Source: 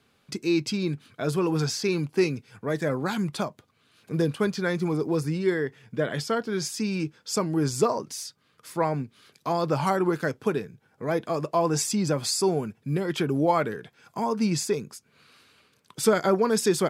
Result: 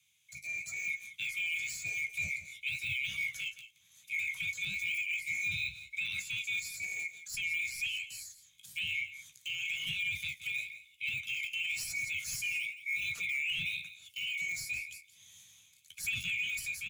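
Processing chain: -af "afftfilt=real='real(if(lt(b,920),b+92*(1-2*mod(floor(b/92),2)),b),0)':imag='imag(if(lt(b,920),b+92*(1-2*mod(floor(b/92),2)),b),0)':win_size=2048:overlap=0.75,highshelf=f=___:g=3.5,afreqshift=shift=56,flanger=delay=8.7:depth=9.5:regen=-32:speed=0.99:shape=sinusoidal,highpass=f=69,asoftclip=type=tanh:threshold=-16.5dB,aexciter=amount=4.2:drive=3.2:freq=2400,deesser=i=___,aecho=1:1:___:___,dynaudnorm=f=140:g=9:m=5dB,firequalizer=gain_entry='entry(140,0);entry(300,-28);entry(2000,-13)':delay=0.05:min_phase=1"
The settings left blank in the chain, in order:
4600, 0.75, 171, 0.211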